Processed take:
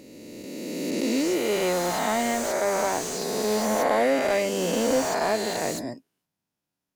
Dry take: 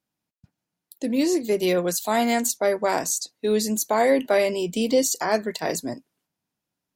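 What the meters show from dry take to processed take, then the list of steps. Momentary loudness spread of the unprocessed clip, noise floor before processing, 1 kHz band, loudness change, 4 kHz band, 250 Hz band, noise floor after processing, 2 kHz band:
8 LU, -85 dBFS, 0.0 dB, -2.0 dB, -0.5 dB, -2.5 dB, -85 dBFS, 0.0 dB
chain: reverse spectral sustain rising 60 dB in 2.65 s; slew-rate limiter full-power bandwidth 270 Hz; trim -5.5 dB

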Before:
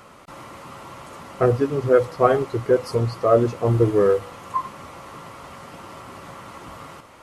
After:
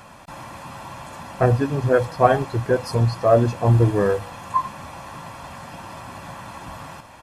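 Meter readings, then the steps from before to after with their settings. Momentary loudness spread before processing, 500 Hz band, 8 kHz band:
21 LU, -1.5 dB, no reading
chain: comb 1.2 ms, depth 56%; trim +2 dB

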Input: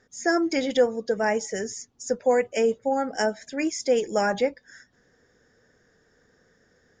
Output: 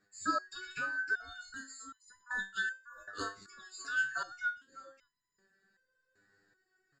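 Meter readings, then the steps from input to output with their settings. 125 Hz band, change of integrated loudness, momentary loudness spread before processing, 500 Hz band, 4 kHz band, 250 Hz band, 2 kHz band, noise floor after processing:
no reading, -12.0 dB, 8 LU, -29.5 dB, -10.5 dB, -21.5 dB, -1.5 dB, -82 dBFS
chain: every band turned upside down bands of 2 kHz; delay 596 ms -17 dB; resonator arpeggio 2.6 Hz 100–1000 Hz

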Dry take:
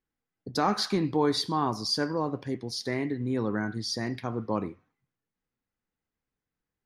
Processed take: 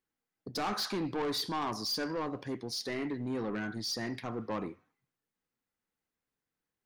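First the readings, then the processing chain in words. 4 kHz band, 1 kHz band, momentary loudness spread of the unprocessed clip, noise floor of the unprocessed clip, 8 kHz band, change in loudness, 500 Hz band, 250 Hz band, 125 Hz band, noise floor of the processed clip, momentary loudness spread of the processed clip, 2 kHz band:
-4.0 dB, -6.5 dB, 8 LU, under -85 dBFS, -3.0 dB, -6.0 dB, -6.5 dB, -6.5 dB, -9.0 dB, under -85 dBFS, 6 LU, -3.5 dB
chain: bass shelf 140 Hz -10 dB; saturation -29.5 dBFS, distortion -8 dB

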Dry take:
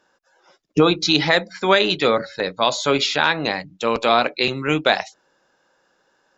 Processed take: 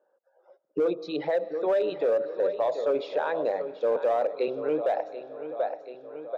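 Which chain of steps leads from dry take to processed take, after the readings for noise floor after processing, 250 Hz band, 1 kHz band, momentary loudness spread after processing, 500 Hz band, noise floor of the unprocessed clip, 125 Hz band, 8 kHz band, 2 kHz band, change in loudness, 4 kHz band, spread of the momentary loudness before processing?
-70 dBFS, -12.0 dB, -11.0 dB, 11 LU, -3.5 dB, -65 dBFS, under -20 dB, no reading, -19.5 dB, -9.0 dB, -26.5 dB, 8 LU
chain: resonances exaggerated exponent 1.5; on a send: feedback delay 734 ms, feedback 39%, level -14 dB; on the sum: level rider gain up to 9 dB; band-pass filter 550 Hz, Q 3.5; algorithmic reverb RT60 3.1 s, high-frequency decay 0.9×, pre-delay 70 ms, DRR 20 dB; in parallel at -5.5 dB: hard clipper -19.5 dBFS, distortion -10 dB; on the sum: peak limiter -15 dBFS, peak gain reduction 8 dB; trim -3 dB

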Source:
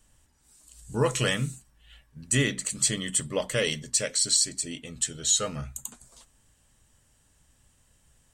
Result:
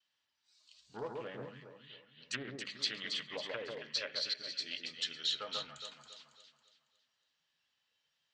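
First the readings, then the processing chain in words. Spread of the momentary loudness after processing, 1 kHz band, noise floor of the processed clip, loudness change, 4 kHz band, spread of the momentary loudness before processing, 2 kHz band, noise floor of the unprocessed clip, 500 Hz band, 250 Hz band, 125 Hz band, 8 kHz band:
19 LU, -10.0 dB, -83 dBFS, -12.5 dB, -6.5 dB, 13 LU, -10.5 dB, -65 dBFS, -13.5 dB, -18.0 dB, -24.0 dB, -26.0 dB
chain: high-pass 88 Hz; spectral noise reduction 9 dB; steep low-pass 4.5 kHz 36 dB/octave; low-pass that closes with the level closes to 620 Hz, closed at -24 dBFS; differentiator; vibrato 0.75 Hz 26 cents; echo whose repeats swap between lows and highs 138 ms, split 1.5 kHz, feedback 62%, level -2 dB; loudspeaker Doppler distortion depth 0.25 ms; trim +8.5 dB

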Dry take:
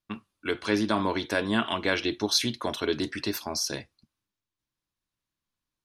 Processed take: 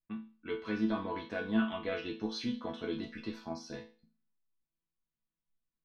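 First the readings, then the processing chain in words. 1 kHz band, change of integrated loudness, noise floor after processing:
-10.5 dB, -9.0 dB, under -85 dBFS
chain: low-pass 3.3 kHz 12 dB/octave; bass shelf 320 Hz +11 dB; chord resonator E3 sus4, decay 0.37 s; trim +5 dB

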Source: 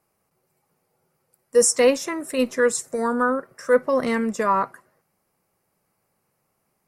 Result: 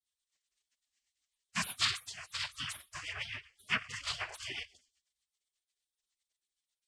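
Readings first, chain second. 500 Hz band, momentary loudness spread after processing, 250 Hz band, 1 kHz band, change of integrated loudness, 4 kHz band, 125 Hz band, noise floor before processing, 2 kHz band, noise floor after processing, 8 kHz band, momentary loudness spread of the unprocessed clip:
-37.5 dB, 11 LU, -27.5 dB, -20.0 dB, -15.5 dB, -0.5 dB, no reading, -73 dBFS, -9.0 dB, under -85 dBFS, -18.0 dB, 8 LU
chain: Schroeder reverb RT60 0.44 s, combs from 30 ms, DRR 15.5 dB; noise-vocoded speech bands 8; spectral gate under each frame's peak -25 dB weak; rotary cabinet horn 8 Hz; trim +6 dB

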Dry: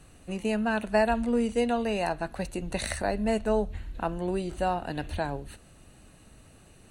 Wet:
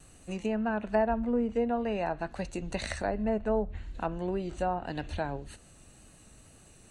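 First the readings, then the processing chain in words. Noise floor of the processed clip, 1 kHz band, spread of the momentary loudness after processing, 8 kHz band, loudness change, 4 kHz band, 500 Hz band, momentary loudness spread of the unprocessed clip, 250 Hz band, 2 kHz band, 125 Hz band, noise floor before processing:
-56 dBFS, -3.0 dB, 9 LU, -6.5 dB, -3.0 dB, -6.0 dB, -2.5 dB, 9 LU, -2.5 dB, -5.0 dB, -2.5 dB, -55 dBFS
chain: low-pass that closes with the level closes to 1.3 kHz, closed at -22.5 dBFS; peaking EQ 7.2 kHz +8.5 dB 0.86 oct; wow and flutter 25 cents; trim -2.5 dB

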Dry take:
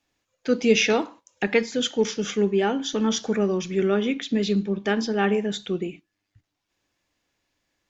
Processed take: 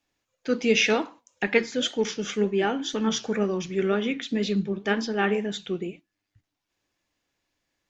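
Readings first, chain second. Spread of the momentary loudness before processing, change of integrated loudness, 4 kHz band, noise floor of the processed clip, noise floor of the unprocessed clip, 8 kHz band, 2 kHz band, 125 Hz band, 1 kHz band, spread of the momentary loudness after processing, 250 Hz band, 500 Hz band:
9 LU, -2.0 dB, -1.0 dB, -83 dBFS, -80 dBFS, no reading, +0.5 dB, -2.5 dB, -1.5 dB, 9 LU, -3.0 dB, -2.5 dB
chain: flange 2 Hz, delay 2.8 ms, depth 6 ms, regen +83%; dynamic bell 1.9 kHz, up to +4 dB, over -39 dBFS, Q 0.72; trim +1.5 dB

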